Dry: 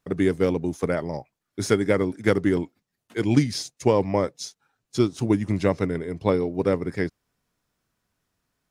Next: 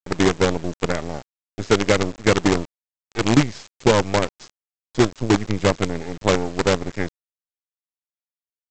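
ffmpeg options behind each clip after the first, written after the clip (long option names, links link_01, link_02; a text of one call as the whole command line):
ffmpeg -i in.wav -filter_complex "[0:a]acrossover=split=3800[link_01][link_02];[link_02]acompressor=threshold=-49dB:ratio=4:attack=1:release=60[link_03];[link_01][link_03]amix=inputs=2:normalize=0,aresample=16000,acrusher=bits=4:dc=4:mix=0:aa=0.000001,aresample=44100,volume=3dB" out.wav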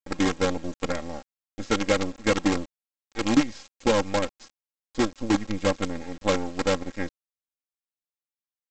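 ffmpeg -i in.wav -af "aecho=1:1:3.7:0.75,volume=-7.5dB" out.wav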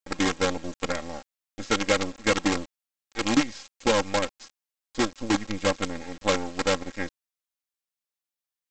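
ffmpeg -i in.wav -af "tiltshelf=frequency=730:gain=-3" out.wav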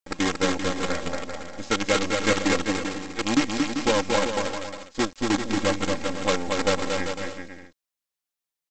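ffmpeg -i in.wav -af "aecho=1:1:230|391|503.7|582.6|637.8:0.631|0.398|0.251|0.158|0.1" out.wav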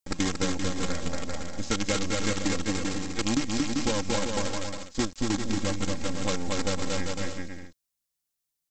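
ffmpeg -i in.wav -af "bass=frequency=250:gain=10,treble=frequency=4000:gain=8,acompressor=threshold=-20dB:ratio=6,volume=-2.5dB" out.wav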